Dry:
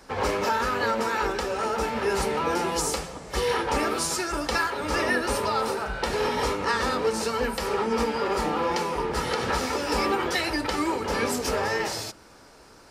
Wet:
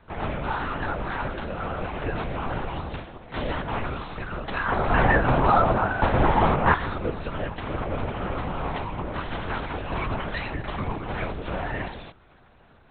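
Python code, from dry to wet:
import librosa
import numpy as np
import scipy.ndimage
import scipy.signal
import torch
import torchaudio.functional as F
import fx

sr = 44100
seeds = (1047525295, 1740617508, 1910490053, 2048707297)

y = fx.peak_eq(x, sr, hz=770.0, db=12.5, octaves=2.7, at=(4.66, 6.73), fade=0.02)
y = fx.lpc_vocoder(y, sr, seeds[0], excitation='whisper', order=8)
y = y * librosa.db_to_amplitude(-3.0)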